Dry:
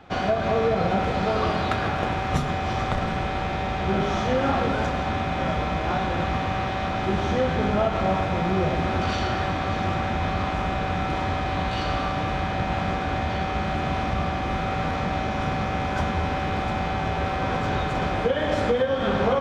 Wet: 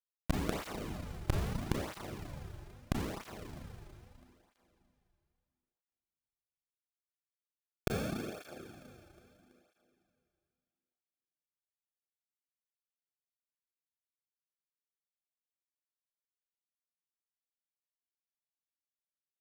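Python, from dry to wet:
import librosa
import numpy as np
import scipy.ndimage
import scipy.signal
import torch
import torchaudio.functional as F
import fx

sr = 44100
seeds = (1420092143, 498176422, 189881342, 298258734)

p1 = fx.tracing_dist(x, sr, depth_ms=0.35)
p2 = scipy.signal.sosfilt(scipy.signal.butter(4, 620.0, 'highpass', fs=sr, output='sos'), p1)
p3 = fx.high_shelf(p2, sr, hz=2700.0, db=-7.0)
p4 = fx.quant_companded(p3, sr, bits=2)
p5 = p3 + (p4 * 10.0 ** (-3.5 / 20.0))
p6 = fx.schmitt(p5, sr, flips_db=-14.0)
p7 = p6 + fx.echo_feedback(p6, sr, ms=328, feedback_pct=58, wet_db=-18.5, dry=0)
p8 = fx.rev_schroeder(p7, sr, rt60_s=2.5, comb_ms=28, drr_db=-5.0)
p9 = fx.flanger_cancel(p8, sr, hz=0.77, depth_ms=4.4)
y = p9 * 10.0 ** (6.0 / 20.0)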